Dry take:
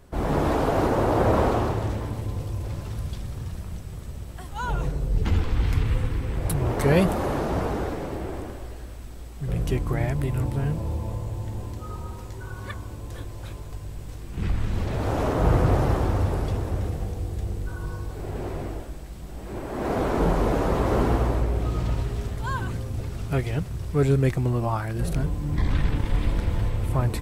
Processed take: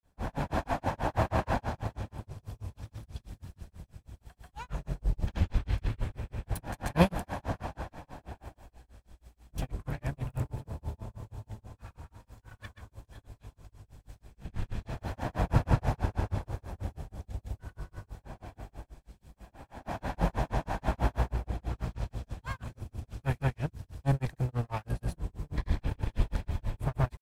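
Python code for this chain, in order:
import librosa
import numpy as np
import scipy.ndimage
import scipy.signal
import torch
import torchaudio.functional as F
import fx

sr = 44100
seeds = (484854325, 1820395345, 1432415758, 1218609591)

y = fx.lower_of_two(x, sr, delay_ms=1.2)
y = fx.granulator(y, sr, seeds[0], grain_ms=166.0, per_s=6.2, spray_ms=100.0, spread_st=0)
y = fx.upward_expand(y, sr, threshold_db=-46.0, expansion=1.5)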